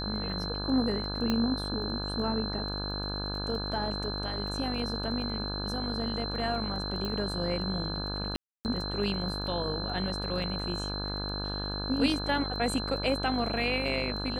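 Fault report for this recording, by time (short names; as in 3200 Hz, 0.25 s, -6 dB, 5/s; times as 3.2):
buzz 50 Hz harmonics 34 -36 dBFS
crackle 11/s -39 dBFS
tone 4100 Hz -36 dBFS
1.3 pop -15 dBFS
7.05 pop -22 dBFS
8.36–8.65 gap 0.289 s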